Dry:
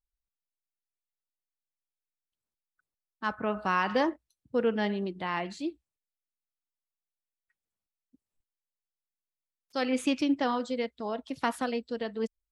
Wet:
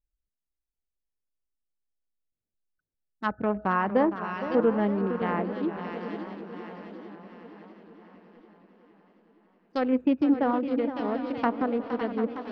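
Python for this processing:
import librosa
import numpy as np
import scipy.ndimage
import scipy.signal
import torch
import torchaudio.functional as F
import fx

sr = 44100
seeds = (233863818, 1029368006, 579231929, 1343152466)

y = fx.wiener(x, sr, points=41)
y = fx.low_shelf(y, sr, hz=340.0, db=2.5)
y = fx.echo_swing(y, sr, ms=743, ratio=3, feedback_pct=42, wet_db=-11.5)
y = fx.env_lowpass_down(y, sr, base_hz=1400.0, full_db=-26.5)
y = fx.echo_warbled(y, sr, ms=462, feedback_pct=65, rate_hz=2.8, cents=119, wet_db=-12)
y = y * librosa.db_to_amplitude(3.5)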